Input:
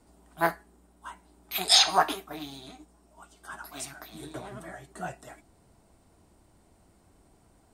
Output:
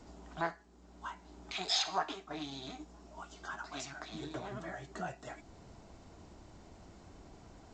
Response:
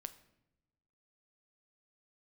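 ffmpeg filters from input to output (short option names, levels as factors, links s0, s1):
-af "acompressor=threshold=0.00251:ratio=2,volume=2.11" -ar 16000 -c:a g722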